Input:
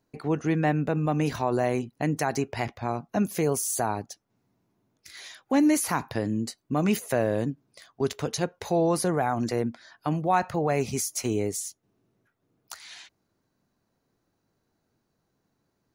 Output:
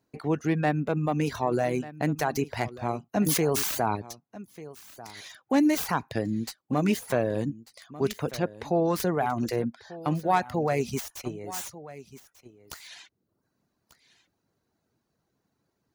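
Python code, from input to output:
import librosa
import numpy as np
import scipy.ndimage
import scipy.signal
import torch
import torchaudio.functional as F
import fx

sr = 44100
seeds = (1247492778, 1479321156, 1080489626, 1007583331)

y = fx.tracing_dist(x, sr, depth_ms=0.14)
y = fx.lowpass(y, sr, hz=fx.line((8.15, 4900.0), (8.84, 1900.0)), slope=6, at=(8.15, 8.84), fade=0.02)
y = fx.dereverb_blind(y, sr, rt60_s=0.58)
y = scipy.signal.sosfilt(scipy.signal.butter(2, 42.0, 'highpass', fs=sr, output='sos'), y)
y = fx.level_steps(y, sr, step_db=13, at=(10.99, 11.51), fade=0.02)
y = y + 10.0 ** (-17.0 / 20.0) * np.pad(y, (int(1192 * sr / 1000.0), 0))[:len(y)]
y = fx.sustainer(y, sr, db_per_s=32.0, at=(3.25, 3.95), fade=0.02)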